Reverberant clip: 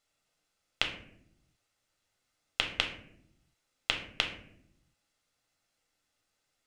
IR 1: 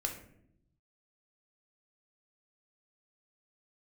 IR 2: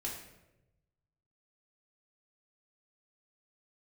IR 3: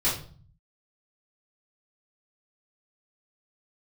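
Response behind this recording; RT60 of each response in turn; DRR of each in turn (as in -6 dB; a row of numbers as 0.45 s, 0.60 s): 1; 0.70 s, 0.95 s, 0.45 s; 2.0 dB, -4.5 dB, -10.0 dB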